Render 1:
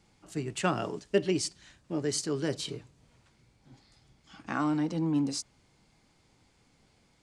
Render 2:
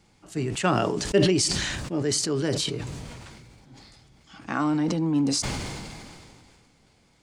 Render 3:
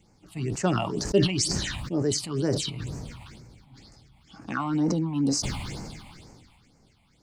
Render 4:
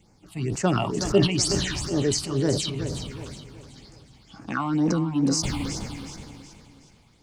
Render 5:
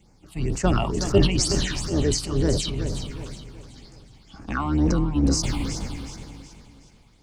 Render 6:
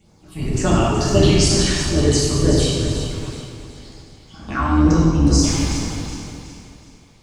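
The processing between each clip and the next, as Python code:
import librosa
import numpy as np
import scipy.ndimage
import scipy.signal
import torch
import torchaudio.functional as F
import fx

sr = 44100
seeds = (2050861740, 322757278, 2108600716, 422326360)

y1 = fx.sustainer(x, sr, db_per_s=26.0)
y1 = y1 * librosa.db_to_amplitude(4.0)
y2 = fx.phaser_stages(y1, sr, stages=6, low_hz=400.0, high_hz=3400.0, hz=2.1, feedback_pct=25)
y3 = fx.echo_feedback(y2, sr, ms=371, feedback_pct=40, wet_db=-10)
y3 = y3 * librosa.db_to_amplitude(2.0)
y4 = fx.octave_divider(y3, sr, octaves=2, level_db=1.0)
y5 = fx.rev_gated(y4, sr, seeds[0], gate_ms=430, shape='falling', drr_db=-5.5)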